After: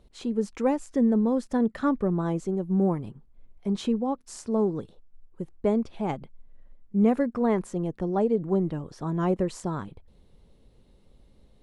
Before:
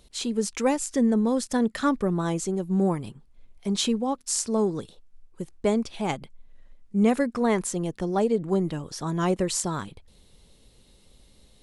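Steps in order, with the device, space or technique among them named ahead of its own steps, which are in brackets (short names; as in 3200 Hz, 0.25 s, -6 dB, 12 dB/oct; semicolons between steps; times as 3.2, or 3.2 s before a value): through cloth (high shelf 2400 Hz -18 dB)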